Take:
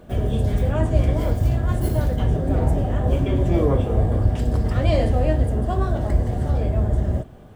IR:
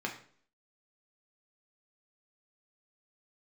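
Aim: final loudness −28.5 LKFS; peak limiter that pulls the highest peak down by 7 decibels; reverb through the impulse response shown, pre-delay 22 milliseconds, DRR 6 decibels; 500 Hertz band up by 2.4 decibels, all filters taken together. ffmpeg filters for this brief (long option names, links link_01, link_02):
-filter_complex "[0:a]equalizer=frequency=500:width_type=o:gain=3,alimiter=limit=-12.5dB:level=0:latency=1,asplit=2[link_01][link_02];[1:a]atrim=start_sample=2205,adelay=22[link_03];[link_02][link_03]afir=irnorm=-1:irlink=0,volume=-10dB[link_04];[link_01][link_04]amix=inputs=2:normalize=0,volume=-6.5dB"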